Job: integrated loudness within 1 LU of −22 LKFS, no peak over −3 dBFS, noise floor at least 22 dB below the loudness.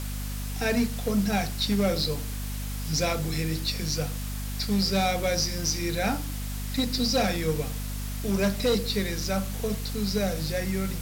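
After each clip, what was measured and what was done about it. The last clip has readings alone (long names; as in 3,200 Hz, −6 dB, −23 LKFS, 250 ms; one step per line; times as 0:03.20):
mains hum 50 Hz; hum harmonics up to 250 Hz; level of the hum −30 dBFS; background noise floor −33 dBFS; target noise floor −50 dBFS; integrated loudness −27.5 LKFS; sample peak −15.0 dBFS; target loudness −22.0 LKFS
→ mains-hum notches 50/100/150/200/250 Hz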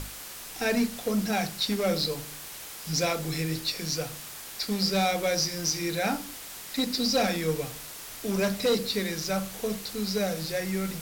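mains hum none found; background noise floor −42 dBFS; target noise floor −51 dBFS
→ broadband denoise 9 dB, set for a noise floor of −42 dBFS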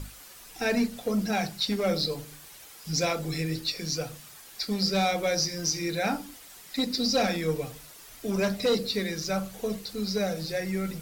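background noise floor −49 dBFS; target noise floor −51 dBFS
→ broadband denoise 6 dB, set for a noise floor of −49 dBFS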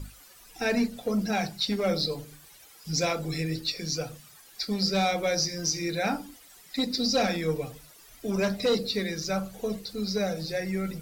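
background noise floor −53 dBFS; integrated loudness −28.5 LKFS; sample peak −14.5 dBFS; target loudness −22.0 LKFS
→ level +6.5 dB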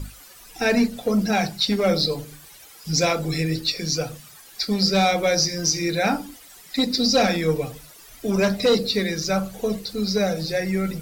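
integrated loudness −22.0 LKFS; sample peak −8.0 dBFS; background noise floor −47 dBFS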